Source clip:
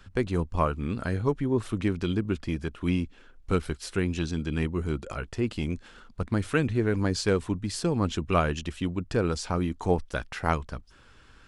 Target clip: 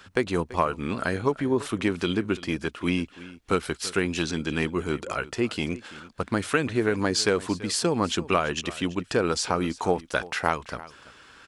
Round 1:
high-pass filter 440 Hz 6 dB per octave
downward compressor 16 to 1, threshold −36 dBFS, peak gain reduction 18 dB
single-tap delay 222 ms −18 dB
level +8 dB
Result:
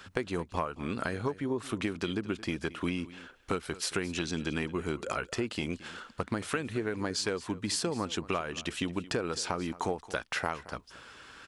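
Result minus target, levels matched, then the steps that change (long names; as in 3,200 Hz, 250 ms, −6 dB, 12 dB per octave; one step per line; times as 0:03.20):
downward compressor: peak gain reduction +10 dB; echo 113 ms early
change: downward compressor 16 to 1, threshold −25.5 dBFS, peak gain reduction 8 dB
change: single-tap delay 335 ms −18 dB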